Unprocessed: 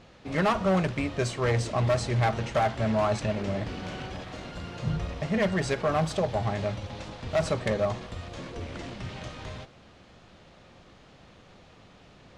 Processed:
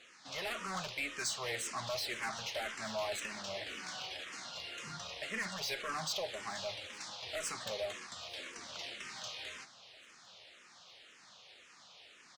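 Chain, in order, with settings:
resonant band-pass 6,300 Hz, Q 0.59
soft clipping −38.5 dBFS, distortion −8 dB
repeating echo 859 ms, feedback 57%, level −22.5 dB
frequency shifter mixed with the dry sound −1.9 Hz
level +8.5 dB

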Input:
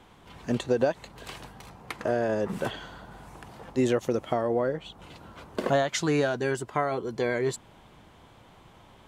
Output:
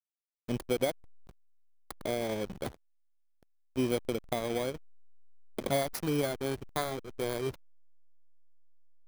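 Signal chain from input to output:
samples in bit-reversed order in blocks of 16 samples
slack as between gear wheels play −24.5 dBFS
level −4.5 dB

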